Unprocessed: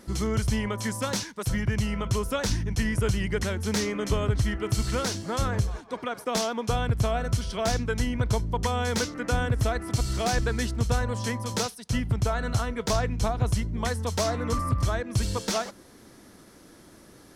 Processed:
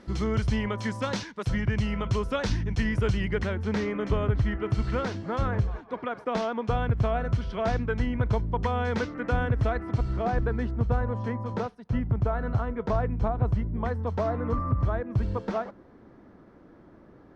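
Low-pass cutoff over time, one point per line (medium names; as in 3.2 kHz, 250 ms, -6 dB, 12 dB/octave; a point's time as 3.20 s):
3.18 s 3.7 kHz
3.60 s 2.2 kHz
9.73 s 2.2 kHz
10.21 s 1.3 kHz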